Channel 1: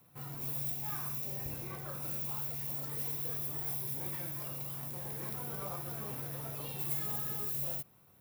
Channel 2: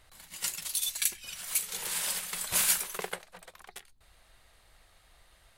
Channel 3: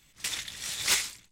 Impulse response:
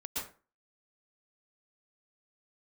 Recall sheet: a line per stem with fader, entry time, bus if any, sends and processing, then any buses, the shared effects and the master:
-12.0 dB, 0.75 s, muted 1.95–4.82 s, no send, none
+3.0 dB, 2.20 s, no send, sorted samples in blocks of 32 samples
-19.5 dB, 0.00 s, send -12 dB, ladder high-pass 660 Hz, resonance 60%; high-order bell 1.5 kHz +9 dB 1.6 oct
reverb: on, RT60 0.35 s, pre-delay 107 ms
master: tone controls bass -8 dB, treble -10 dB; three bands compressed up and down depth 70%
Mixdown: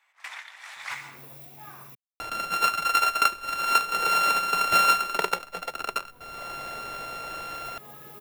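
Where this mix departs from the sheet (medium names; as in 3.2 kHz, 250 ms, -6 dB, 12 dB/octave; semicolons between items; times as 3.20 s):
stem 1 -12.0 dB -> -20.5 dB; stem 2 +3.0 dB -> +12.5 dB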